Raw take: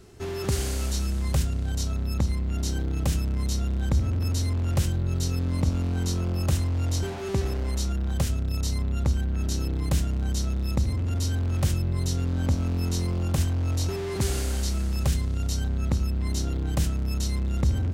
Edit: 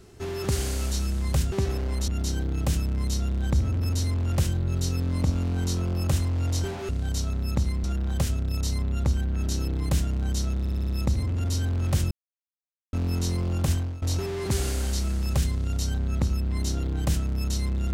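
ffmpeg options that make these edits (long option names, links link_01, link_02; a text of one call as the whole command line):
ffmpeg -i in.wav -filter_complex "[0:a]asplit=13[link_01][link_02][link_03][link_04][link_05][link_06][link_07][link_08][link_09][link_10][link_11][link_12][link_13];[link_01]atrim=end=1.522[link_14];[link_02]atrim=start=7.278:end=7.842[link_15];[link_03]atrim=start=2.468:end=7.282[link_16];[link_04]atrim=start=1.518:end=2.472[link_17];[link_05]atrim=start=7.838:end=10.652[link_18];[link_06]atrim=start=10.588:end=10.652[link_19];[link_07]atrim=start=10.588:end=10.652[link_20];[link_08]atrim=start=10.588:end=10.652[link_21];[link_09]atrim=start=10.588:end=10.652[link_22];[link_10]atrim=start=10.588:end=11.81,asetpts=PTS-STARTPTS,afade=type=out:start_time=1.218:duration=0.004:curve=hsin[link_23];[link_11]atrim=start=11.81:end=12.63,asetpts=PTS-STARTPTS,volume=0[link_24];[link_12]atrim=start=12.63:end=13.72,asetpts=PTS-STARTPTS,afade=type=in:duration=0.004:curve=hsin,afade=type=out:start_time=0.83:duration=0.26:silence=0.105925[link_25];[link_13]atrim=start=13.72,asetpts=PTS-STARTPTS,afade=type=in:duration=0.004:curve=hsin:silence=0.105925[link_26];[link_14][link_15]acrossfade=duration=0.004:curve1=hsin:curve2=hsin[link_27];[link_27][link_16]acrossfade=duration=0.004:curve1=hsin:curve2=hsin[link_28];[link_28][link_17]acrossfade=duration=0.004:curve1=hsin:curve2=hsin[link_29];[link_29][link_18]acrossfade=duration=0.004:curve1=hsin:curve2=hsin[link_30];[link_30][link_19]acrossfade=duration=0.004:curve1=hsin:curve2=hsin[link_31];[link_31][link_20]acrossfade=duration=0.004:curve1=hsin:curve2=hsin[link_32];[link_32][link_21]acrossfade=duration=0.004:curve1=hsin:curve2=hsin[link_33];[link_33][link_22]acrossfade=duration=0.004:curve1=hsin:curve2=hsin[link_34];[link_23][link_24][link_25][link_26]concat=n=4:v=0:a=1[link_35];[link_34][link_35]acrossfade=duration=0.004:curve1=hsin:curve2=hsin" out.wav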